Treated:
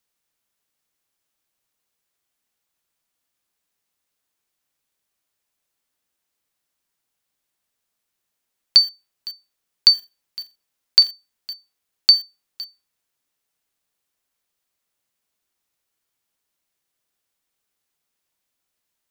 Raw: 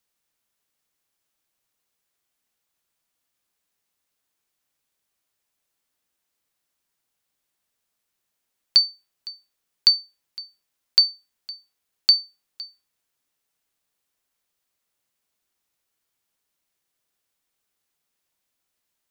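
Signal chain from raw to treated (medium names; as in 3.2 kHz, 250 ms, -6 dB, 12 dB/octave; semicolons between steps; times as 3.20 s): in parallel at -6 dB: bit crusher 6-bit; 9.89–11.09 s: on the sum: flutter echo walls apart 7.6 m, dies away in 0.23 s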